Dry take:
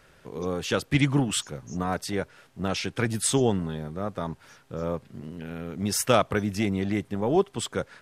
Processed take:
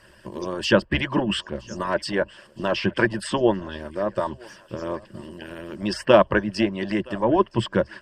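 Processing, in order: harmonic-percussive split harmonic -18 dB; ripple EQ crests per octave 1.3, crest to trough 11 dB; treble ducked by the level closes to 2400 Hz, closed at -26 dBFS; on a send: thinning echo 0.968 s, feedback 54%, high-pass 420 Hz, level -23 dB; on the sum: gain +8 dB

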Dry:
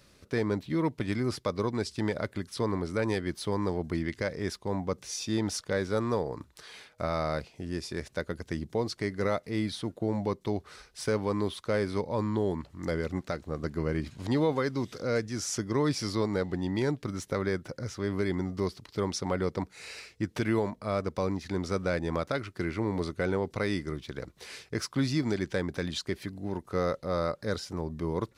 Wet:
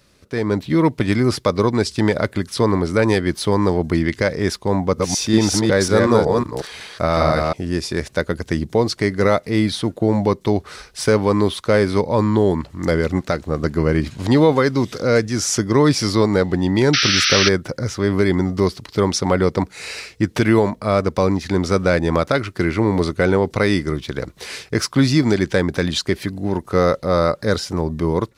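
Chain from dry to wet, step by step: 4.78–7.53 reverse delay 0.184 s, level -2 dB; AGC gain up to 10 dB; 16.93–17.49 painted sound noise 1200–6100 Hz -20 dBFS; gain +3 dB

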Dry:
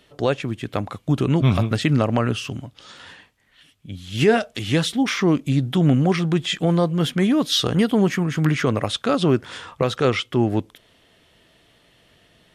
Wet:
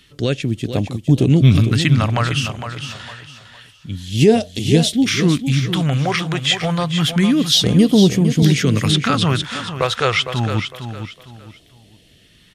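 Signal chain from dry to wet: phaser stages 2, 0.28 Hz, lowest notch 230–1400 Hz; feedback echo 0.457 s, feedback 30%, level -9 dB; 8.42–9.42 three-band squash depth 70%; gain +6.5 dB

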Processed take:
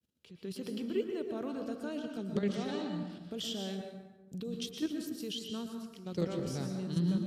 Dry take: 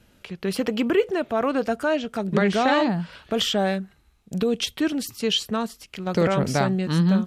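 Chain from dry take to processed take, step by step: expander -49 dBFS; HPF 87 Hz; band shelf 1200 Hz -9.5 dB 2.4 oct; level quantiser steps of 10 dB; plate-style reverb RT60 1.1 s, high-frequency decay 0.6×, pre-delay 0.105 s, DRR 4 dB; gain -9 dB

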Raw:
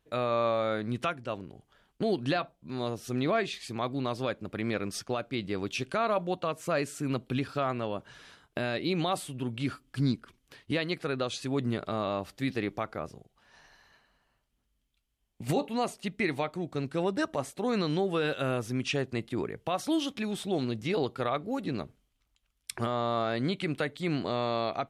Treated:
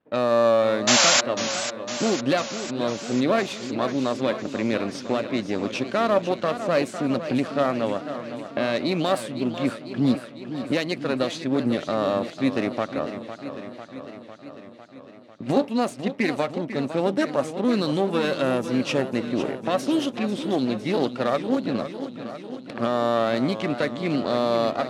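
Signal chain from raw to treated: half-wave gain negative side -12 dB; HPF 160 Hz 12 dB/oct; low-pass opened by the level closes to 1900 Hz, open at -28.5 dBFS; painted sound noise, 0.87–1.21, 570–7500 Hz -25 dBFS; small resonant body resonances 250/560 Hz, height 7 dB, ringing for 30 ms; warbling echo 0.501 s, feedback 68%, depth 134 cents, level -11 dB; gain +7 dB

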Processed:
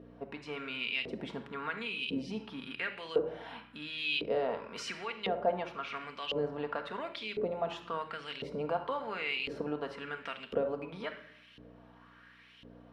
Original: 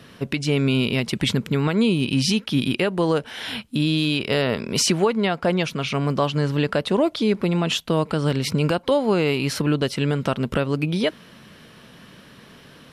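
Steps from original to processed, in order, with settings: shoebox room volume 2000 m³, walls furnished, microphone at 1.7 m; hum 60 Hz, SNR 10 dB; LFO band-pass saw up 0.95 Hz 460–3100 Hz; gain -5 dB

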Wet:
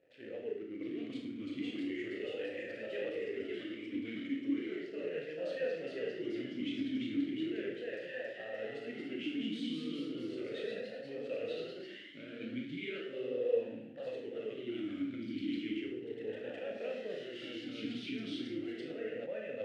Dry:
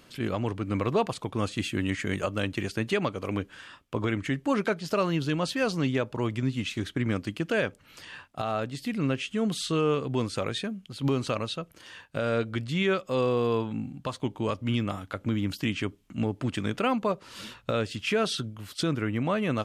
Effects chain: reverse; compressor 10:1, threshold -34 dBFS, peak gain reduction 14 dB; reverse; flange 0.43 Hz, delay 2 ms, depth 6.2 ms, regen -62%; Schroeder reverb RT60 0.75 s, combs from 25 ms, DRR -0.5 dB; backlash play -50.5 dBFS; echoes that change speed 0.721 s, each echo +1 st, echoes 3; vowel sweep e-i 0.36 Hz; gain +8.5 dB

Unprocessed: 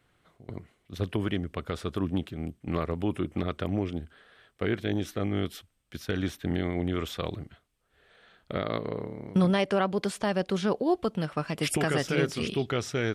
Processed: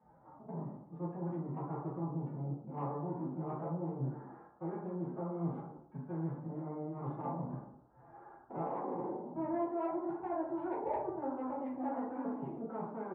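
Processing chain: Wiener smoothing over 9 samples; in parallel at +2 dB: limiter -23.5 dBFS, peak gain reduction 10 dB; on the sum: low shelf 340 Hz +4 dB; frequency-shifting echo 0.118 s, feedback 38%, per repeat +37 Hz, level -20 dB; formant-preserving pitch shift +9.5 st; reverse; compressor 10:1, threshold -33 dBFS, peak gain reduction 20 dB; reverse; ladder low-pass 1000 Hz, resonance 65%; soft clip -32.5 dBFS, distortion -26 dB; HPF 120 Hz 6 dB/oct; plate-style reverb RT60 0.66 s, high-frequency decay 0.3×, DRR -6.5 dB

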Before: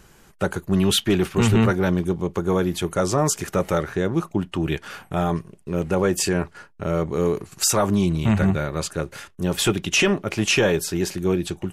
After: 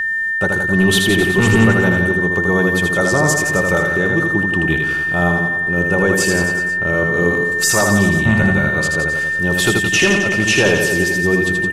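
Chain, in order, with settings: reverse bouncing-ball echo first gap 80 ms, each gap 1.1×, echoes 5; whine 1800 Hz -19 dBFS; gain +2.5 dB

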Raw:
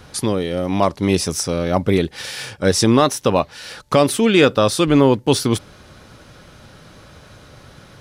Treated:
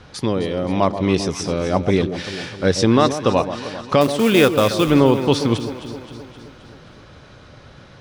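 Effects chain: LPF 5200 Hz 12 dB/oct; 4.01–4.9 short-mantissa float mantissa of 2-bit; echo with dull and thin repeats by turns 0.131 s, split 980 Hz, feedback 75%, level -9.5 dB; gain -1 dB

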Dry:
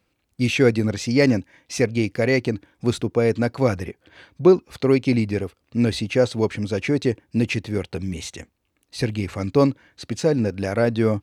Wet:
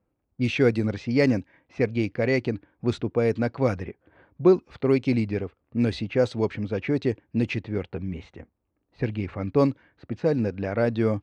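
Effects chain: low-pass opened by the level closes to 1000 Hz, open at -13 dBFS; high shelf 5800 Hz -9 dB; gain -3.5 dB

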